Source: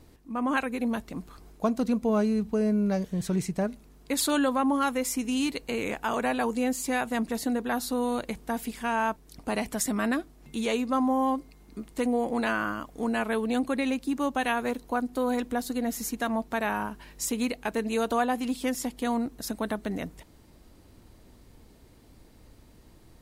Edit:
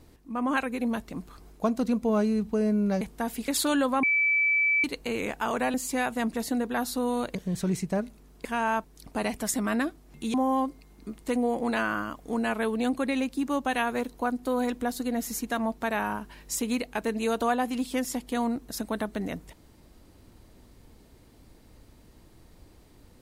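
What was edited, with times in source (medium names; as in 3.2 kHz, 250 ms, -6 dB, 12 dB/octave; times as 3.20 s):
3.01–4.11 s: swap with 8.30–8.77 s
4.66–5.47 s: bleep 2.31 kHz -20.5 dBFS
6.37–6.69 s: delete
10.66–11.04 s: delete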